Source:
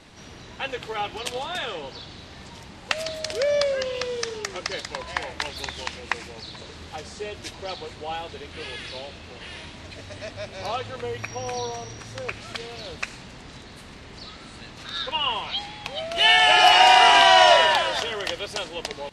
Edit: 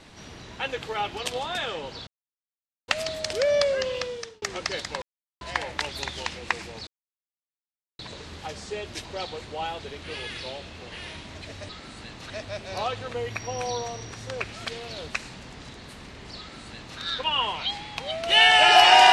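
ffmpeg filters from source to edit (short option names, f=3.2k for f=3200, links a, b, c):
-filter_complex "[0:a]asplit=8[a][b][c][d][e][f][g][h];[a]atrim=end=2.07,asetpts=PTS-STARTPTS,afade=t=out:st=2.066:d=0.004:c=hsin[i];[b]atrim=start=2.07:end=2.88,asetpts=PTS-STARTPTS,volume=0[j];[c]atrim=start=2.88:end=4.42,asetpts=PTS-STARTPTS,afade=t=in:d=0.004:c=hsin,afade=t=out:st=1.04:d=0.5[k];[d]atrim=start=4.42:end=5.02,asetpts=PTS-STARTPTS,afade=t=in:d=0.004:c=hsin,afade=t=out:st=0.596:d=0.004:c=hsin,apad=pad_dur=0.39[l];[e]atrim=start=5.02:end=6.48,asetpts=PTS-STARTPTS,afade=t=in:d=0.004:c=hsin,afade=t=out:st=1.456:d=0.004:c=hsin,apad=pad_dur=1.12[m];[f]atrim=start=6.48:end=10.182,asetpts=PTS-STARTPTS,afade=t=in:d=0.004:c=hsin[n];[g]atrim=start=14.258:end=14.872[o];[h]atrim=start=10.178[p];[i][j][k][l][m][n]concat=n=6:v=0:a=1[q];[q][o]acrossfade=d=0.004:c1=hsin:c2=hsin[r];[r][p]acrossfade=d=0.004:c1=hsin:c2=hsin"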